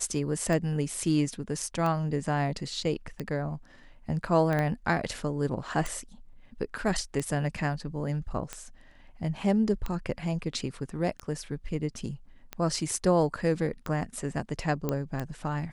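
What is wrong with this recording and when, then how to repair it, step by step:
tick 45 rpm
4.59 pop -17 dBFS
14.89 pop -15 dBFS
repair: de-click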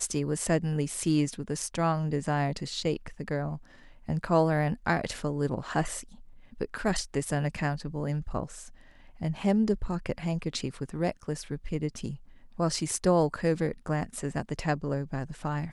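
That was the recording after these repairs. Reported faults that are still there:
4.59 pop

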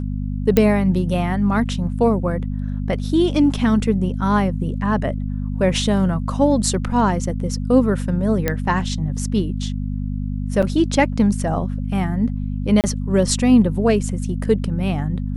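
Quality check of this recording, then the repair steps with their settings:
hum 50 Hz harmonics 5 -24 dBFS
0.57 pop -2 dBFS
8.48 pop -5 dBFS
10.62–10.63 gap 6.2 ms
12.81–12.84 gap 28 ms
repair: de-click; de-hum 50 Hz, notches 5; interpolate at 10.62, 6.2 ms; interpolate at 12.81, 28 ms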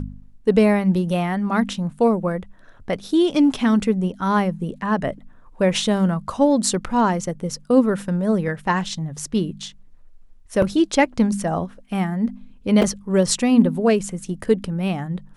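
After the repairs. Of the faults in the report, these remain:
none

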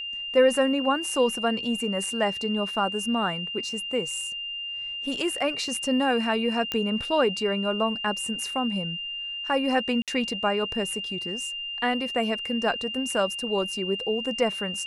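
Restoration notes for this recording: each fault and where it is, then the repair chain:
tone 2800 Hz -31 dBFS
6.72 pop -13 dBFS
10.02–10.08 gap 57 ms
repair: de-click; notch 2800 Hz, Q 30; interpolate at 10.02, 57 ms

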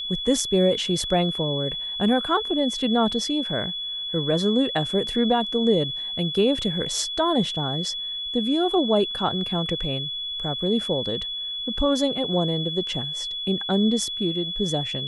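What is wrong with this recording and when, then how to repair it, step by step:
tone 3400 Hz -28 dBFS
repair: notch 3400 Hz, Q 30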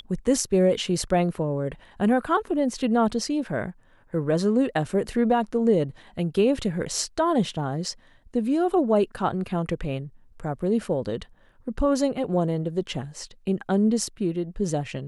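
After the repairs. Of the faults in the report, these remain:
none

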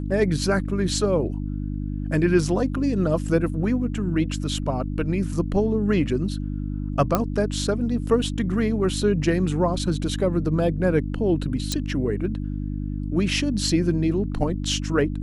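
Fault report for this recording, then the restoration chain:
hum 50 Hz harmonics 6 -28 dBFS
7.15 pop -6 dBFS
11.72 pop -11 dBFS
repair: de-click; de-hum 50 Hz, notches 6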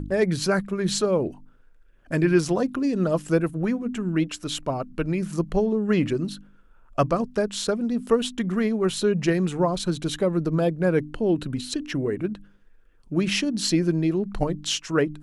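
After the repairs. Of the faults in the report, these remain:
none

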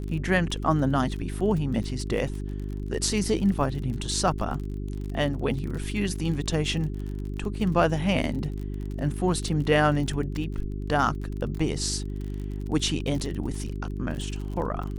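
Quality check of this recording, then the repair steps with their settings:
crackle 36/s -33 dBFS
hum 50 Hz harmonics 8 -32 dBFS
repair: de-click; de-hum 50 Hz, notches 8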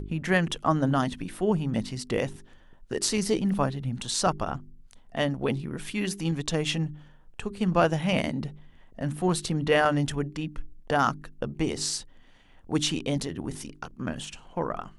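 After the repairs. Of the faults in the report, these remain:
none

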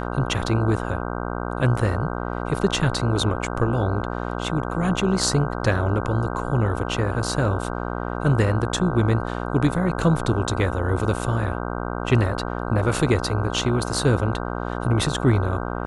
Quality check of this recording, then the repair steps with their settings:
buzz 60 Hz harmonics 26 -28 dBFS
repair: de-hum 60 Hz, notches 26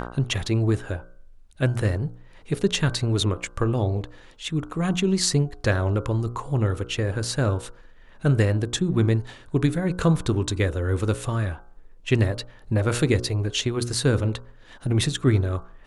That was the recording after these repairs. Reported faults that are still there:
none

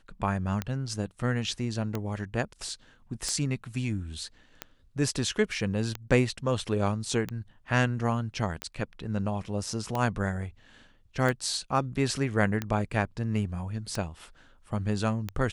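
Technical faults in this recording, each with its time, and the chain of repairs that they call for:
tick 45 rpm -16 dBFS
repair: de-click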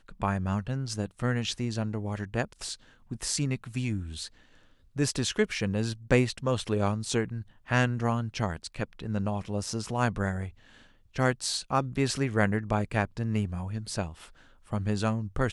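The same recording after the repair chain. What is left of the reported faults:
none

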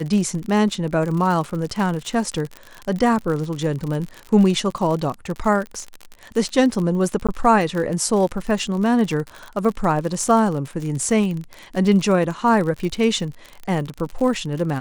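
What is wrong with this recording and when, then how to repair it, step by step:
crackle 55/s -25 dBFS
7.27–7.29 gap 16 ms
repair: de-click; interpolate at 7.27, 16 ms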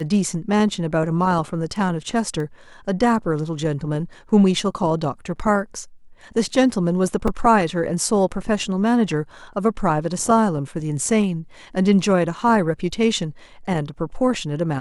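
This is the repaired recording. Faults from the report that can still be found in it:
none

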